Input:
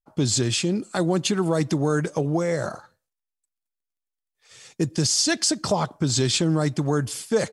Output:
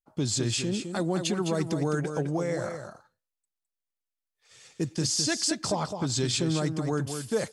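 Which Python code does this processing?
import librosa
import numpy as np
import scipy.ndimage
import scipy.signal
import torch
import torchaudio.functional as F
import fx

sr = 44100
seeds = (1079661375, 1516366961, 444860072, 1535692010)

y = x + 10.0 ** (-7.5 / 20.0) * np.pad(x, (int(210 * sr / 1000.0), 0))[:len(x)]
y = y * 10.0 ** (-6.0 / 20.0)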